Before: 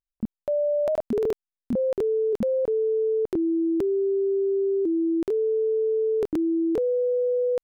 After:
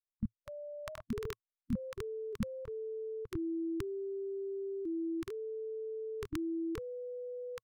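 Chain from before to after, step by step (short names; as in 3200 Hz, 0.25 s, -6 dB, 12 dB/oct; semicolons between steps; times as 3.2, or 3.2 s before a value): per-bin expansion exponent 1.5; EQ curve 110 Hz 0 dB, 690 Hz -28 dB, 1100 Hz -3 dB; gain +4.5 dB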